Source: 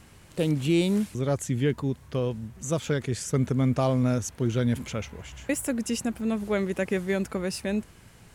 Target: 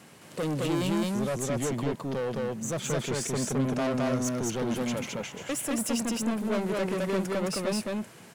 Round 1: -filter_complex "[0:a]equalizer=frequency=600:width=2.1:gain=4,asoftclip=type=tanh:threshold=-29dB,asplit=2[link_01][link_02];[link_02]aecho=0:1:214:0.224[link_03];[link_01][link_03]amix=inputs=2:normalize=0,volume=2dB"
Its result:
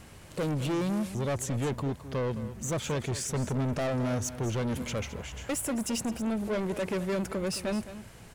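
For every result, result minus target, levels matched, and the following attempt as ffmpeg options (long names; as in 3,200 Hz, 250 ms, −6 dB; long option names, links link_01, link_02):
echo-to-direct −12 dB; 125 Hz band +3.5 dB
-filter_complex "[0:a]equalizer=frequency=600:width=2.1:gain=4,asoftclip=type=tanh:threshold=-29dB,asplit=2[link_01][link_02];[link_02]aecho=0:1:214:0.891[link_03];[link_01][link_03]amix=inputs=2:normalize=0,volume=2dB"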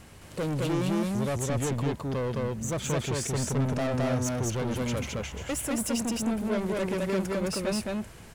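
125 Hz band +3.5 dB
-filter_complex "[0:a]highpass=frequency=140:width=0.5412,highpass=frequency=140:width=1.3066,equalizer=frequency=600:width=2.1:gain=4,asoftclip=type=tanh:threshold=-29dB,asplit=2[link_01][link_02];[link_02]aecho=0:1:214:0.891[link_03];[link_01][link_03]amix=inputs=2:normalize=0,volume=2dB"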